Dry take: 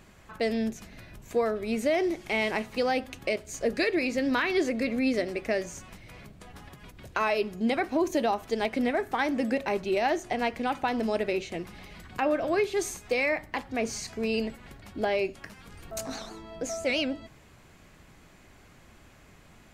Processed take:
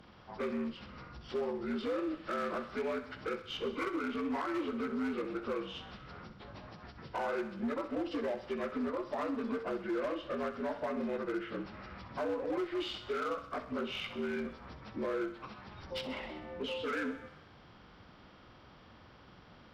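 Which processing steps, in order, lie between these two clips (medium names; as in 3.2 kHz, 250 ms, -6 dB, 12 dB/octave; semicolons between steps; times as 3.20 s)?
frequency axis rescaled in octaves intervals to 76%; compression 2:1, threshold -37 dBFS, peak gain reduction 8.5 dB; Chebyshev shaper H 4 -25 dB, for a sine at -30 dBFS; thinning echo 64 ms, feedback 67%, high-pass 420 Hz, level -12 dB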